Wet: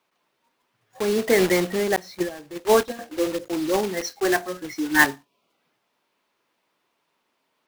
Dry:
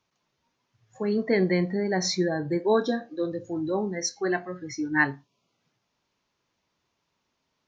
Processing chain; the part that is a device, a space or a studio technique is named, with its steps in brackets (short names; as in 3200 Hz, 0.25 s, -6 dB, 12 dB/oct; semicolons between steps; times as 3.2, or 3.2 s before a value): 1.96–2.99 gate -22 dBFS, range -15 dB; early digital voice recorder (BPF 290–3500 Hz; block floating point 3-bit); gain +6 dB